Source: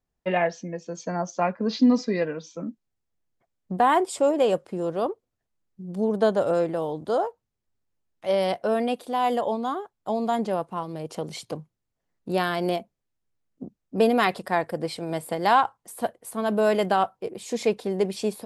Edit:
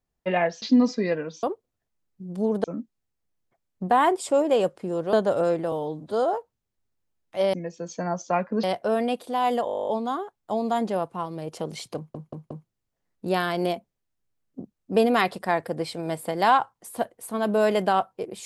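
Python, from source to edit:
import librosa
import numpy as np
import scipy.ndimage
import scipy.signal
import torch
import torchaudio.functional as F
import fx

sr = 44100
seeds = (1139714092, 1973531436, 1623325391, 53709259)

y = fx.edit(x, sr, fx.move(start_s=0.62, length_s=1.1, to_s=8.43),
    fx.move(start_s=5.02, length_s=1.21, to_s=2.53),
    fx.stretch_span(start_s=6.82, length_s=0.41, factor=1.5),
    fx.stutter(start_s=9.45, slice_s=0.02, count=12),
    fx.stutter(start_s=11.54, slice_s=0.18, count=4), tone=tone)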